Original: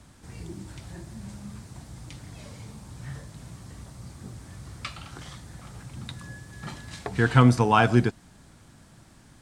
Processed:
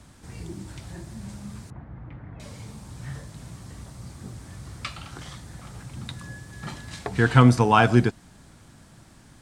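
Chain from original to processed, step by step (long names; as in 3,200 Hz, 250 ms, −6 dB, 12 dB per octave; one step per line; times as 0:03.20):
0:01.70–0:02.40: low-pass filter 1,900 Hz 24 dB per octave
level +2 dB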